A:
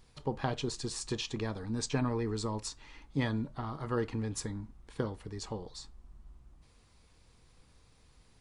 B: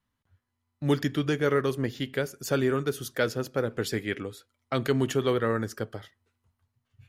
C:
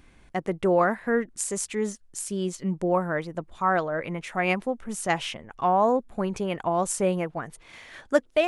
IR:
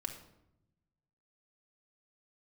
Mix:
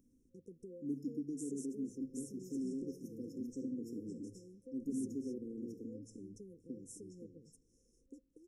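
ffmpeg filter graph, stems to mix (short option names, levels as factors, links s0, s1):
-filter_complex "[0:a]adelay=1700,volume=0.75,asplit=2[s0][s1];[s1]volume=0.106[s2];[1:a]acompressor=mode=upward:threshold=0.0158:ratio=2.5,volume=0.631,asplit=2[s3][s4];[s4]volume=0.0944[s5];[2:a]acompressor=threshold=0.0316:ratio=10,volume=0.133,asplit=2[s6][s7];[s7]volume=0.112[s8];[s0][s3]amix=inputs=2:normalize=0,asplit=3[s9][s10][s11];[s9]bandpass=f=270:t=q:w=8,volume=1[s12];[s10]bandpass=f=2290:t=q:w=8,volume=0.501[s13];[s11]bandpass=f=3010:t=q:w=8,volume=0.355[s14];[s12][s13][s14]amix=inputs=3:normalize=0,acompressor=threshold=0.0141:ratio=6,volume=1[s15];[3:a]atrim=start_sample=2205[s16];[s2][s5][s8]amix=inputs=3:normalize=0[s17];[s17][s16]afir=irnorm=-1:irlink=0[s18];[s6][s15][s18]amix=inputs=3:normalize=0,afftfilt=real='re*(1-between(b*sr/4096,530,5200))':imag='im*(1-between(b*sr/4096,530,5200))':win_size=4096:overlap=0.75,lowshelf=f=100:g=-6.5"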